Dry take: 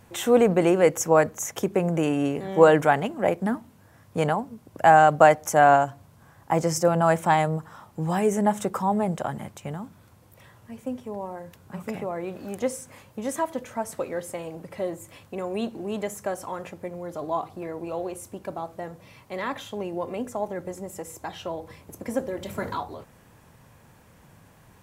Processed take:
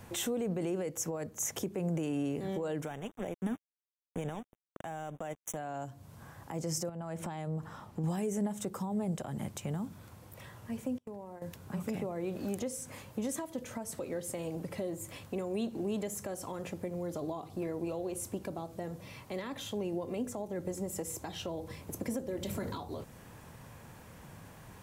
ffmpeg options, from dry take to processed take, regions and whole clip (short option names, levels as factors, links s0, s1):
-filter_complex "[0:a]asettb=1/sr,asplit=3[s0][s1][s2];[s0]atrim=end=2.864[s3];[s1]atrim=start=2.86:end=5.57,asetpts=PTS-STARTPTS,afade=t=in:d=0.004:c=qsin,afade=t=out:st=2.706:d=0.004:c=qsin,aeval=exprs='sgn(val(0))*max(abs(val(0))-0.0224,0)':c=same,asuperstop=centerf=4600:order=20:qfactor=2.4[s4];[s2]atrim=start=5.566[s5];[s3][s4]acrossfade=d=0.004:c1=hsin:c2=qsin[s6];[s6][s5]acrossfade=d=0.004:c1=qsin:c2=hsin,asettb=1/sr,asplit=3[s7][s8][s9];[s7]atrim=end=6.894[s10];[s8]atrim=start=6.89:end=8.04,asetpts=PTS-STARTPTS,afade=t=in:d=0.004:c=qsin,afade=t=out:st=1.146:d=0.004:c=qsin,highshelf=f=5500:g=-9,acompressor=threshold=0.0251:ratio=3:attack=3.2:release=140:knee=1:detection=peak[s11];[s9]atrim=start=8.036[s12];[s10][s11]acrossfade=d=0.004:c1=hsin:c2=qsin[s13];[s13][s12]acrossfade=d=0.004:c1=qsin:c2=hsin,asettb=1/sr,asplit=3[s14][s15][s16];[s14]atrim=end=10.984[s17];[s15]atrim=start=10.98:end=11.42,asetpts=PTS-STARTPTS,afade=t=in:d=0.004:c=qsin,afade=t=out:st=0.436:d=0.004:c=qsin,agate=range=0.0224:threshold=0.0141:ratio=16:release=100:detection=peak,acompressor=threshold=0.00891:ratio=6:attack=3.2:release=140:knee=1:detection=peak[s18];[s16]atrim=start=11.416[s19];[s17][s18]acrossfade=d=0.004:c1=hsin:c2=qsin[s20];[s20][s19]acrossfade=d=0.004:c1=qsin:c2=hsin,acompressor=threshold=0.0224:ratio=3,alimiter=level_in=1.26:limit=0.0631:level=0:latency=1:release=23,volume=0.794,acrossover=split=480|3000[s21][s22][s23];[s22]acompressor=threshold=0.00178:ratio=2[s24];[s21][s24][s23]amix=inputs=3:normalize=0,volume=1.33"